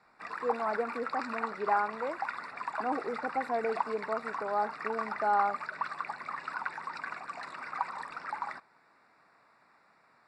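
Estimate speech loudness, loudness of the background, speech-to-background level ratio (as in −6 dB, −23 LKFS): −34.0 LKFS, −38.0 LKFS, 4.0 dB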